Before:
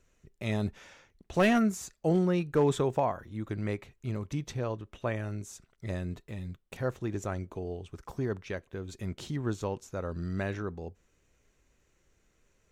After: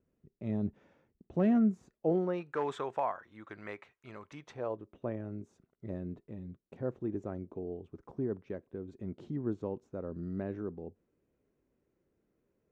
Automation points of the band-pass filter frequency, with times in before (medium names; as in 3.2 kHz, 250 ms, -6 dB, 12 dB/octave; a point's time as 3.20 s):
band-pass filter, Q 1
1.82 s 230 Hz
2.57 s 1.3 kHz
4.41 s 1.3 kHz
4.95 s 290 Hz